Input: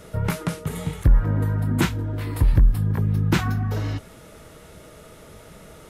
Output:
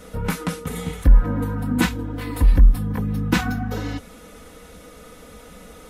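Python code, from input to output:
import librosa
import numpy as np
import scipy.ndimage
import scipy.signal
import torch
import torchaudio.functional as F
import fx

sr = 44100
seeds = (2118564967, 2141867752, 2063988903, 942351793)

y = x + 0.84 * np.pad(x, (int(4.0 * sr / 1000.0), 0))[:len(x)]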